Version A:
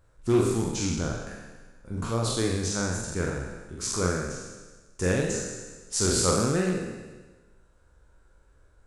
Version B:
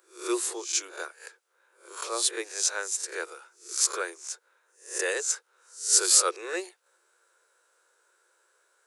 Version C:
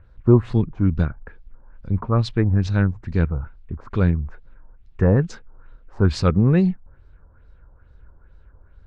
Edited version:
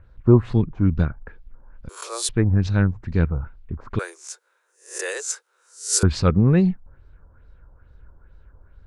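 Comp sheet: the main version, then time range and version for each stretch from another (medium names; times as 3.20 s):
C
1.89–2.29 s: from B
3.99–6.03 s: from B
not used: A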